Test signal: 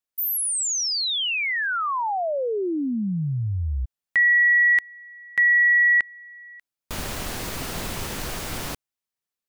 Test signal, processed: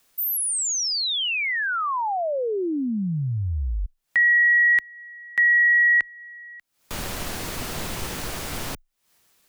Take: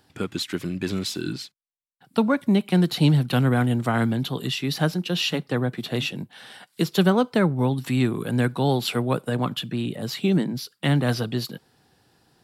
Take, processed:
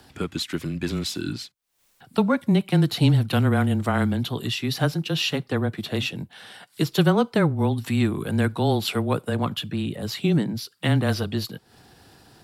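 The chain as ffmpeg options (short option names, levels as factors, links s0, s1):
-af "acompressor=mode=upward:threshold=0.0141:ratio=2.5:attack=0.13:release=209:knee=2.83:detection=peak,afreqshift=-17"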